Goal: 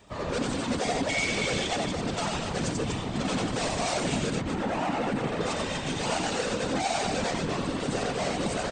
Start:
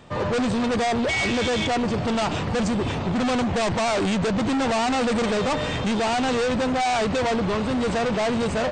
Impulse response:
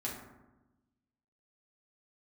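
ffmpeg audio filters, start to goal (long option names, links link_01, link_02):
-filter_complex "[0:a]asettb=1/sr,asplit=3[link_01][link_02][link_03];[link_01]atrim=end=4.344[link_04];[link_02]atrim=start=4.34:end=5.41,asetpts=PTS-STARTPTS,afade=type=in:duration=0.004:curve=qsin,afade=type=out:start_time=1.066:duration=0.004:curve=qsin,acrossover=split=2700[link_05][link_06];[link_06]acompressor=threshold=-48dB:ratio=4:attack=1:release=60[link_07];[link_05][link_07]amix=inputs=2:normalize=0[link_08];[link_03]atrim=start=5.406[link_09];[link_04][link_08]acrossfade=duration=0.004:curve1=hsin:curve2=qsin[link_10];[link_10][link_09]acrossfade=duration=0.004:curve1=qsin:curve2=hsin,asplit=2[link_11][link_12];[link_12]aecho=0:1:90.38|244.9:0.708|0.447[link_13];[link_11][link_13]amix=inputs=2:normalize=0,afftfilt=real='hypot(re,im)*cos(2*PI*random(0))':imag='hypot(re,im)*sin(2*PI*random(1))':win_size=512:overlap=0.75,crystalizer=i=2:c=0,volume=-3dB"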